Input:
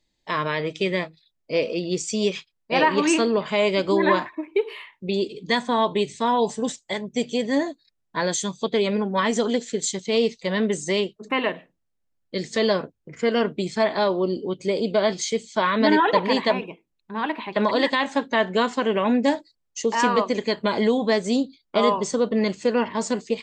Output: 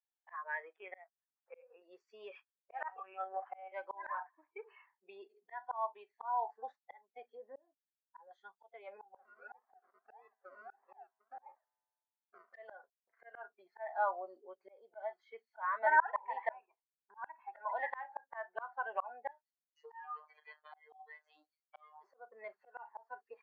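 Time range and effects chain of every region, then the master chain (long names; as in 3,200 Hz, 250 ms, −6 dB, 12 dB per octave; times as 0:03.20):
0:00.76–0:01.82: mu-law and A-law mismatch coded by A + upward compression, threshold −42 dBFS + linear-prediction vocoder at 8 kHz pitch kept
0:02.88–0:03.72: amplitude modulation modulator 74 Hz, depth 65% + one-pitch LPC vocoder at 8 kHz 190 Hz
0:07.32–0:08.31: treble cut that deepens with the level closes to 810 Hz, closed at −20 dBFS + parametric band 1,000 Hz −7.5 dB 2.1 octaves + double-tracking delay 18 ms −11 dB
0:09.16–0:12.54: sample-and-hold swept by an LFO 41×, swing 60% 1.6 Hz + hard clipping −23.5 dBFS + tuned comb filter 110 Hz, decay 1.5 s, mix 30%
0:19.31–0:22.04: spectral tilt +3.5 dB per octave + downward compressor 3 to 1, threshold −25 dBFS + phases set to zero 152 Hz
whole clip: noise reduction from a noise print of the clip's start 21 dB; elliptic band-pass filter 710–1,700 Hz, stop band 80 dB; volume swells 603 ms; level +2.5 dB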